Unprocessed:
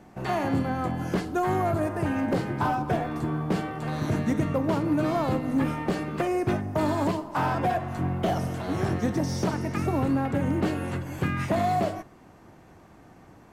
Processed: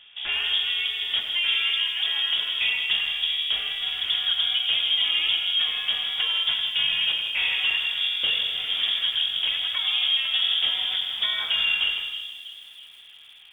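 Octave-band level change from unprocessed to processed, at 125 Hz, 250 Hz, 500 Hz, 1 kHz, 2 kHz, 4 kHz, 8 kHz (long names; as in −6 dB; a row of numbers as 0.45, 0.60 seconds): below −30 dB, below −30 dB, below −20 dB, −14.5 dB, +9.5 dB, +26.5 dB, can't be measured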